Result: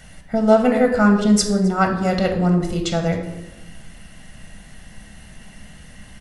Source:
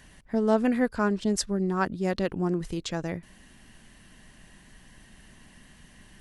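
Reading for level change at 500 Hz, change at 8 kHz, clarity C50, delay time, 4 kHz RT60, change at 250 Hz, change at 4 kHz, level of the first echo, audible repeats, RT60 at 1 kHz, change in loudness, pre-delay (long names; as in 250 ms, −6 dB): +9.5 dB, +9.0 dB, 7.0 dB, 266 ms, 0.75 s, +9.5 dB, +9.5 dB, −24.5 dB, 1, 0.95 s, +9.5 dB, 6 ms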